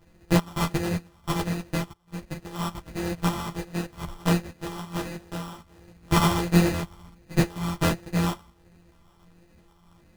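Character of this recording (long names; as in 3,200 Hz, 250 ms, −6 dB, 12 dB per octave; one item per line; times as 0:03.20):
a buzz of ramps at a fixed pitch in blocks of 256 samples
phaser sweep stages 6, 1.4 Hz, lowest notch 500–1,100 Hz
aliases and images of a low sample rate 2,200 Hz, jitter 0%
a shimmering, thickened sound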